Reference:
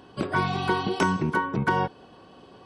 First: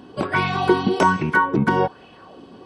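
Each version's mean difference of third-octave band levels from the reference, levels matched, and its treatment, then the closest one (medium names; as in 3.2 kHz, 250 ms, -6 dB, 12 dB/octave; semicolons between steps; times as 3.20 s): 2.5 dB: sweeping bell 1.2 Hz 220–2600 Hz +11 dB; trim +2.5 dB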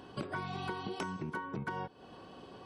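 4.5 dB: compression 6:1, threshold -35 dBFS, peak gain reduction 16 dB; trim -1.5 dB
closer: first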